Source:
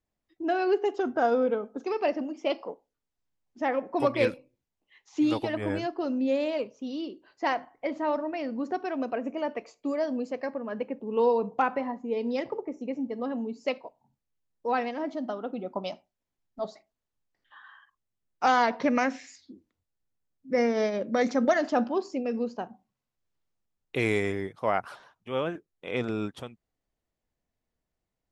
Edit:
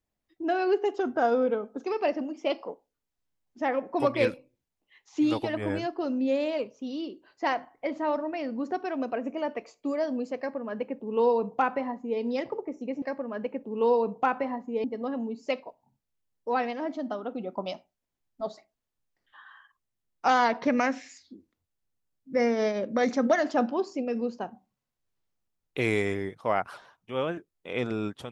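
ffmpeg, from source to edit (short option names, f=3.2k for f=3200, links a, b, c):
-filter_complex "[0:a]asplit=3[a][b][c];[a]atrim=end=13.022[d];[b]atrim=start=10.378:end=12.202[e];[c]atrim=start=13.018[f];[d][e]acrossfade=d=0.004:c1=hsin:c2=hsin[g];[g][f]acrossfade=d=0.004:c1=hsin:c2=hsin"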